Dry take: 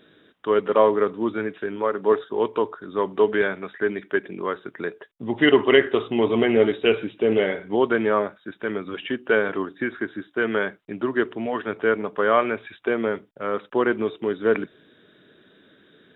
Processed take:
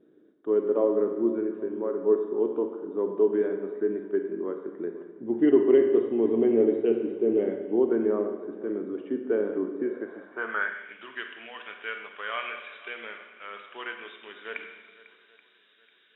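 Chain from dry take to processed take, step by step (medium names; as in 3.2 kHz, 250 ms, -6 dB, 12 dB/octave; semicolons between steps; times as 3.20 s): on a send: shuffle delay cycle 831 ms, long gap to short 1.5:1, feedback 33%, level -19.5 dB; on the sum: vibrato 0.34 Hz 11 cents; Schroeder reverb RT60 1.3 s, combs from 31 ms, DRR 5 dB; band-pass sweep 330 Hz -> 2.7 kHz, 9.78–10.98 s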